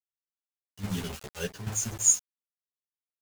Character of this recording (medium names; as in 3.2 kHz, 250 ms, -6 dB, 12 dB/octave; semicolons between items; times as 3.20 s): a quantiser's noise floor 6-bit, dither none; chopped level 1.2 Hz, depth 65%, duty 75%; a shimmering, thickened sound